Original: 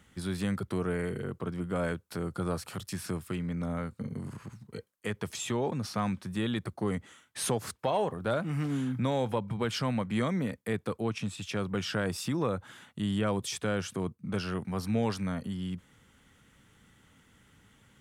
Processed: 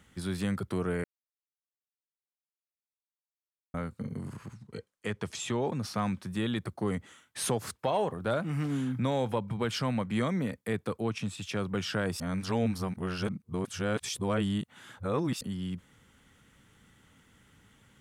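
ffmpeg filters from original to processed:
ffmpeg -i in.wav -filter_complex "[0:a]asettb=1/sr,asplit=3[link_01][link_02][link_03];[link_01]atrim=end=4.534[link_04];[link_02]atrim=start=4.53:end=5.61,asetpts=PTS-STARTPTS,afade=type=in:duration=0.004:curve=qsin,afade=type=out:start_time=1.076:duration=0.004:curve=qsin,lowpass=9100[link_05];[link_03]atrim=start=5.606[link_06];[link_04][link_05]acrossfade=duration=0.004:curve1=hsin:curve2=qsin[link_07];[link_07][link_06]acrossfade=duration=0.004:curve1=qsin:curve2=hsin,asplit=5[link_08][link_09][link_10][link_11][link_12];[link_08]atrim=end=1.04,asetpts=PTS-STARTPTS,afade=type=out:start_time=1.036:duration=0.004:curve=hsin[link_13];[link_09]atrim=start=1.04:end=3.74,asetpts=PTS-STARTPTS,volume=0[link_14];[link_10]atrim=start=3.74:end=12.202,asetpts=PTS-STARTPTS,afade=type=in:duration=0.004:curve=hsin[link_15];[link_11]atrim=start=12.198:end=15.412,asetpts=PTS-STARTPTS,areverse[link_16];[link_12]atrim=start=15.408[link_17];[link_13][link_14][link_15]concat=n=3:v=0:a=1[link_18];[link_18][link_16]acrossfade=duration=0.004:curve1=hsin:curve2=hsin[link_19];[link_19][link_17]acrossfade=duration=0.004:curve1=hsin:curve2=hsin" out.wav

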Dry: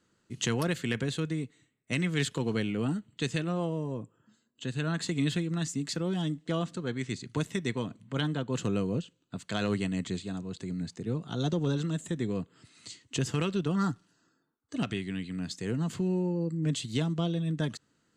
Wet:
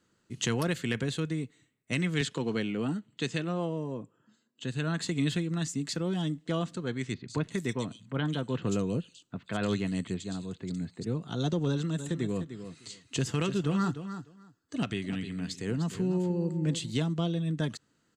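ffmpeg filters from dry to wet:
ffmpeg -i in.wav -filter_complex "[0:a]asettb=1/sr,asplit=3[link_01][link_02][link_03];[link_01]atrim=end=2.214[link_04];[link_02]atrim=start=2.21:end=4.63,asetpts=PTS-STARTPTS,afade=type=in:duration=0.004:curve=qsin,afade=type=out:start_time=2.416:duration=0.004:curve=qsin,highpass=140,lowpass=7800[link_05];[link_03]atrim=start=4.626[link_06];[link_04][link_05]acrossfade=duration=0.004:curve1=hsin:curve2=qsin[link_07];[link_07][link_06]acrossfade=duration=0.004:curve1=qsin:curve2=hsin,asettb=1/sr,asplit=3[link_08][link_09][link_10];[link_08]atrim=end=7.144[link_11];[link_09]atrim=start=7.14:end=11.07,asetpts=PTS-STARTPTS,afade=type=in:duration=0.004:curve=qsin,afade=type=out:start_time=3.926:duration=0.004:curve=qsin,acrossover=split=3100[link_12][link_13];[link_13]adelay=140[link_14];[link_12][link_14]amix=inputs=2:normalize=0,atrim=end_sample=173313[link_15];[link_10]atrim=start=11.066[link_16];[link_11][link_15]acrossfade=duration=0.004:curve1=hsin:curve2=qsin[link_17];[link_17][link_16]acrossfade=duration=0.004:curve1=qsin:curve2=hsin,asplit=3[link_18][link_19][link_20];[link_18]afade=type=out:start_time=11.98:duration=0.02[link_21];[link_19]aecho=1:1:302|604:0.299|0.0448,afade=type=in:start_time=11.98:duration=0.02,afade=type=out:start_time=16.9:duration=0.02[link_22];[link_20]afade=type=in:start_time=16.9:duration=0.02[link_23];[link_21][link_22][link_23]amix=inputs=3:normalize=0" out.wav

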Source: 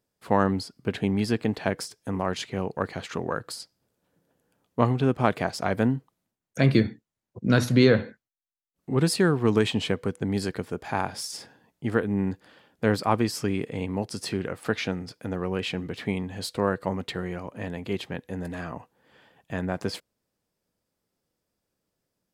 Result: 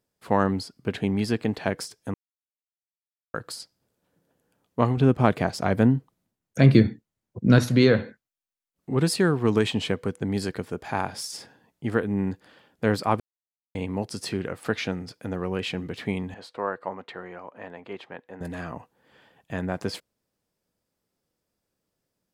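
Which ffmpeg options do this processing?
ffmpeg -i in.wav -filter_complex "[0:a]asettb=1/sr,asplit=3[link_01][link_02][link_03];[link_01]atrim=end=4.974[link_04];[link_02]atrim=start=4.97:end=7.59,asetpts=PTS-STARTPTS,afade=type=in:duration=0.004:curve=qsin,afade=type=out:start_time=2.616:duration=0.004:curve=qsin,lowshelf=frequency=370:gain=6[link_05];[link_03]atrim=start=7.586[link_06];[link_04][link_05]acrossfade=duration=0.004:curve1=hsin:curve2=qsin[link_07];[link_07][link_06]acrossfade=duration=0.004:curve1=qsin:curve2=hsin,asettb=1/sr,asplit=3[link_08][link_09][link_10];[link_08]atrim=end=16.344[link_11];[link_09]atrim=start=16.34:end=18.41,asetpts=PTS-STARTPTS,afade=type=in:duration=0.004:curve=qsin,afade=type=out:start_time=2.066:duration=0.004:curve=qsin,bandpass=frequency=990:width_type=q:width=0.87[link_12];[link_10]atrim=start=18.406[link_13];[link_11][link_12]acrossfade=duration=0.004:curve1=hsin:curve2=qsin[link_14];[link_14][link_13]acrossfade=duration=0.004:curve1=qsin:curve2=hsin,asplit=5[link_15][link_16][link_17][link_18][link_19];[link_15]atrim=end=2.14,asetpts=PTS-STARTPTS,afade=type=out:start_time=2.136:duration=0.004:curve=hsin[link_20];[link_16]atrim=start=2.14:end=3.34,asetpts=PTS-STARTPTS,volume=0[link_21];[link_17]atrim=start=3.34:end=13.2,asetpts=PTS-STARTPTS,afade=type=in:duration=0.004:curve=hsin,afade=type=out:start_time=9.856:duration=0.004:curve=hsin[link_22];[link_18]atrim=start=13.2:end=13.75,asetpts=PTS-STARTPTS,volume=0[link_23];[link_19]atrim=start=13.75,asetpts=PTS-STARTPTS,afade=type=in:duration=0.004:curve=hsin[link_24];[link_20][link_21][link_22][link_23][link_24]concat=n=5:v=0:a=1" out.wav

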